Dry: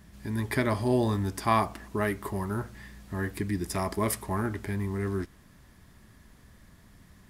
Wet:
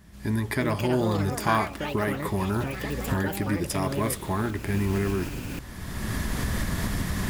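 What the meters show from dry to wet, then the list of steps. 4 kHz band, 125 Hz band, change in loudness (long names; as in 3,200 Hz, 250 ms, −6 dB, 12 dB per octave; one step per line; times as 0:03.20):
+7.0 dB, +4.5 dB, +2.0 dB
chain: camcorder AGC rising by 25 dB per second
delay with pitch and tempo change per echo 429 ms, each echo +6 semitones, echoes 3, each echo −6 dB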